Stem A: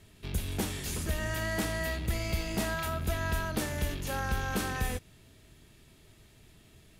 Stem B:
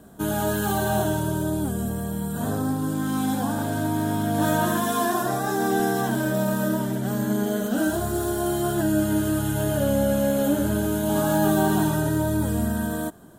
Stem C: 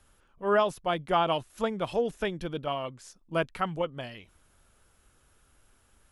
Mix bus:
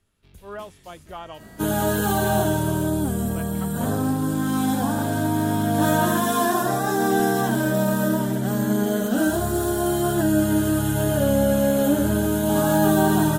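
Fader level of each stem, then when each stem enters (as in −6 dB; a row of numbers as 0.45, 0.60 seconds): −16.5, +2.5, −12.0 decibels; 0.00, 1.40, 0.00 seconds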